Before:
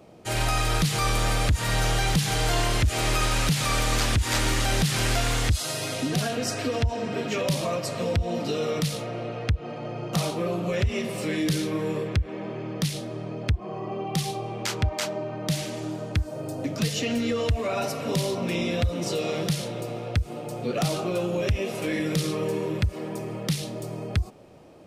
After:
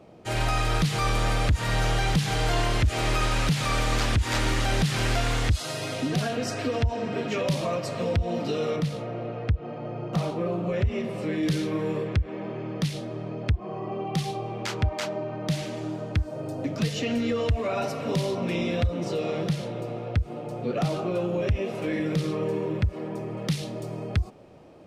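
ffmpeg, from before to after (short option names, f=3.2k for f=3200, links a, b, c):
-af "asetnsamples=n=441:p=0,asendcmd='8.76 lowpass f 1400;11.43 lowpass f 3300;18.87 lowpass f 1900;23.37 lowpass f 4300',lowpass=f=3.8k:p=1"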